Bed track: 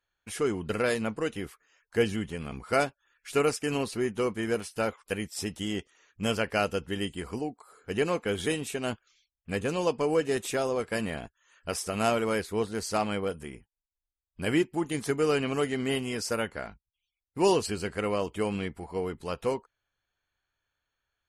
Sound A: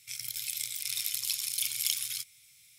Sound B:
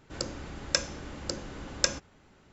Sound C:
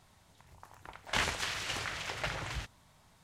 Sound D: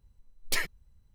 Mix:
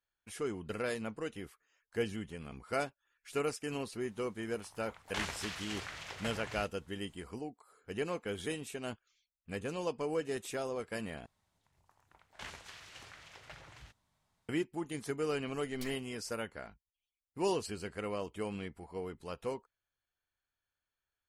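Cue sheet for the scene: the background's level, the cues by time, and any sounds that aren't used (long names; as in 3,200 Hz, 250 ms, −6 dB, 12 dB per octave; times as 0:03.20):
bed track −9 dB
0:04.01: mix in C −6.5 dB
0:11.26: overwrite with C −15.5 dB
0:15.29: mix in D −16.5 dB + multiband upward and downward compressor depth 40%
not used: A, B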